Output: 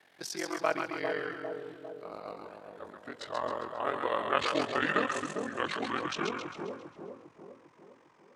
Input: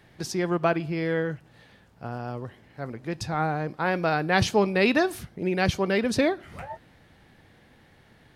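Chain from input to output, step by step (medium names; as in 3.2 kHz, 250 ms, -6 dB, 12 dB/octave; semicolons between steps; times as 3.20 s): pitch bend over the whole clip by -10.5 st starting unshifted; Bessel high-pass 560 Hz, order 2; ring modulator 22 Hz; two-band feedback delay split 820 Hz, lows 401 ms, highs 134 ms, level -4 dB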